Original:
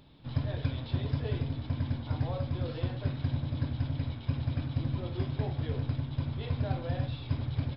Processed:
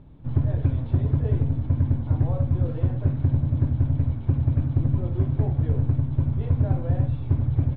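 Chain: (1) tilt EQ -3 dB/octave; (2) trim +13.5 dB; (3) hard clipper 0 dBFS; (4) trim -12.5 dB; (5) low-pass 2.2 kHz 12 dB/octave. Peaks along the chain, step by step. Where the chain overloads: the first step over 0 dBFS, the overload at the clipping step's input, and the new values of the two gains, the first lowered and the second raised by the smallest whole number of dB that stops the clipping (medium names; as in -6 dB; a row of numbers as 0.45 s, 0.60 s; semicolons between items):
-8.0 dBFS, +5.5 dBFS, 0.0 dBFS, -12.5 dBFS, -12.5 dBFS; step 2, 5.5 dB; step 2 +7.5 dB, step 4 -6.5 dB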